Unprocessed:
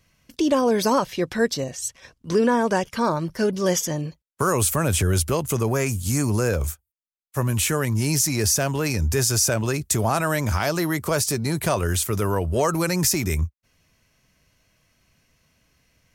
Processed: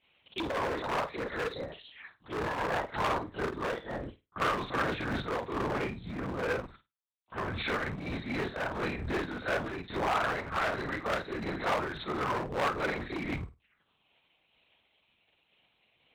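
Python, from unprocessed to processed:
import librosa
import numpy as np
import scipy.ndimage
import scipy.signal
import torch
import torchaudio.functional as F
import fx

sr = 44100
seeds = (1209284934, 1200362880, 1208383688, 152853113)

p1 = fx.frame_reverse(x, sr, frame_ms=104.0)
p2 = fx.env_phaser(p1, sr, low_hz=260.0, high_hz=2900.0, full_db=-26.5)
p3 = fx.lpc_vocoder(p2, sr, seeds[0], excitation='whisper', order=8)
p4 = fx.highpass(p3, sr, hz=110.0, slope=6)
p5 = fx.rider(p4, sr, range_db=5, speed_s=0.5)
p6 = p4 + (p5 * 10.0 ** (2.0 / 20.0))
p7 = np.clip(10.0 ** (18.5 / 20.0) * p6, -1.0, 1.0) / 10.0 ** (18.5 / 20.0)
p8 = fx.tilt_shelf(p7, sr, db=-8.0, hz=770.0)
p9 = fx.room_flutter(p8, sr, wall_m=8.8, rt60_s=0.22)
p10 = fx.am_noise(p9, sr, seeds[1], hz=5.7, depth_pct=60)
y = p10 * 10.0 ** (-5.0 / 20.0)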